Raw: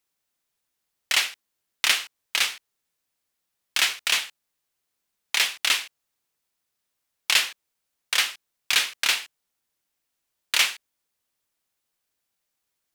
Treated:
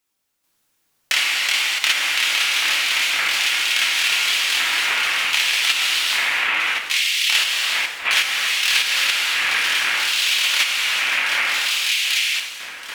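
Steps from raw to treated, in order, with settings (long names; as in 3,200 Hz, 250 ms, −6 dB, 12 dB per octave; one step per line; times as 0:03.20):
on a send: delay that swaps between a low-pass and a high-pass 784 ms, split 2,100 Hz, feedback 67%, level −2 dB
on the sum: delay with pitch and tempo change per echo 438 ms, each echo +1 semitone, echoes 3
dense smooth reverb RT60 1.5 s, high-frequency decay 0.85×, DRR −3 dB
in parallel at +1 dB: output level in coarse steps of 15 dB
on the sum: dynamic equaliser 2,300 Hz, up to +5 dB, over −26 dBFS, Q 0.76
downward compressor 6 to 1, threshold −16 dBFS, peak gain reduction 13.5 dB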